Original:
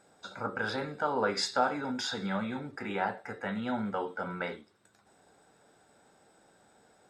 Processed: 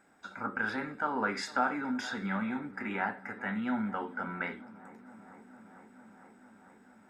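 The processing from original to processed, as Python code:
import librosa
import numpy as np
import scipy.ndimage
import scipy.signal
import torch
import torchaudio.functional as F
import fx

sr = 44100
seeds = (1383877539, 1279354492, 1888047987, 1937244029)

p1 = fx.graphic_eq_10(x, sr, hz=(125, 250, 500, 2000, 4000, 8000), db=(-9, 6, -9, 6, -10, -5))
y = p1 + fx.echo_wet_lowpass(p1, sr, ms=454, feedback_pct=81, hz=1300.0, wet_db=-19.0, dry=0)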